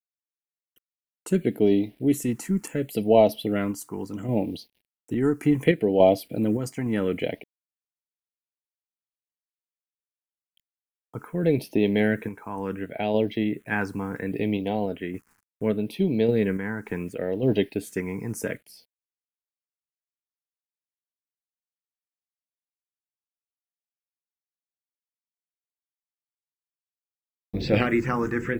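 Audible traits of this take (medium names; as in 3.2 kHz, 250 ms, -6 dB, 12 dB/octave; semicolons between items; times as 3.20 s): a quantiser's noise floor 10-bit, dither none; phasing stages 4, 0.7 Hz, lowest notch 580–1300 Hz; random-step tremolo 3.5 Hz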